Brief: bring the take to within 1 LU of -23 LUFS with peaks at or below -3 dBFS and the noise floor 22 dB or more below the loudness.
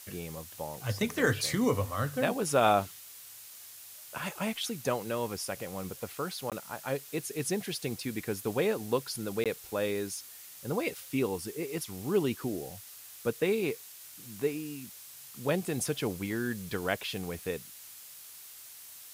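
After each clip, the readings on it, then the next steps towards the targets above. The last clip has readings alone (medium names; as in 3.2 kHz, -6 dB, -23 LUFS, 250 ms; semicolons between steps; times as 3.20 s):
dropouts 2; longest dropout 17 ms; noise floor -49 dBFS; noise floor target -55 dBFS; loudness -33.0 LUFS; peak level -11.5 dBFS; loudness target -23.0 LUFS
-> interpolate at 6.50/9.44 s, 17 ms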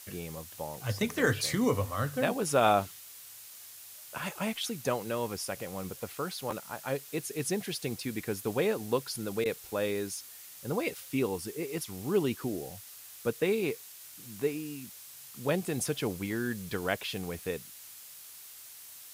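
dropouts 0; noise floor -49 dBFS; noise floor target -55 dBFS
-> noise print and reduce 6 dB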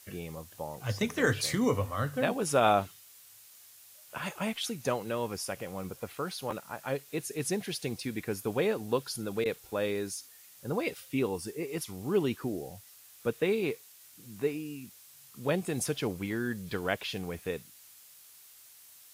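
noise floor -55 dBFS; loudness -33.0 LUFS; peak level -11.5 dBFS; loudness target -23.0 LUFS
-> trim +10 dB; peak limiter -3 dBFS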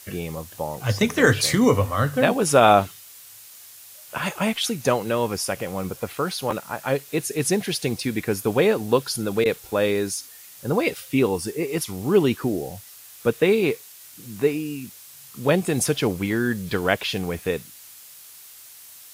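loudness -23.0 LUFS; peak level -3.0 dBFS; noise floor -45 dBFS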